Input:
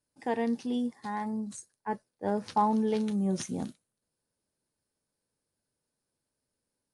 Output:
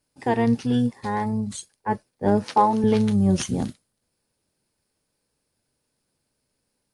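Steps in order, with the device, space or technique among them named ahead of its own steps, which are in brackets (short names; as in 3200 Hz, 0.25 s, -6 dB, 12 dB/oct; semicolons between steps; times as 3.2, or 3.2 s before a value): octave pedal (harmoniser -12 st -6 dB); 2.44–2.84 HPF 270 Hz 12 dB/oct; gain +8 dB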